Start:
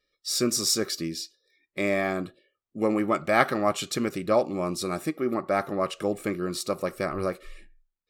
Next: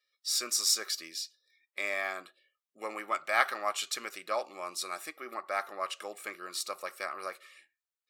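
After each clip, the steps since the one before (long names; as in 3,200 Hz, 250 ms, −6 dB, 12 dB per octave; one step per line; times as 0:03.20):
high-pass filter 1,000 Hz 12 dB per octave
level −2 dB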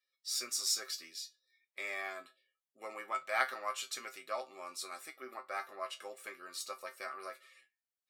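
tuned comb filter 130 Hz, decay 0.16 s, harmonics all, mix 90%
level +1 dB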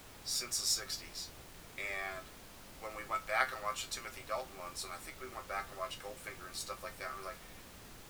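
background noise pink −53 dBFS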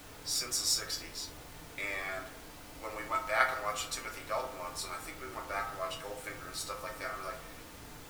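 feedback delay network reverb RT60 0.77 s, low-frequency decay 0.7×, high-frequency decay 0.35×, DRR 1.5 dB
level +2 dB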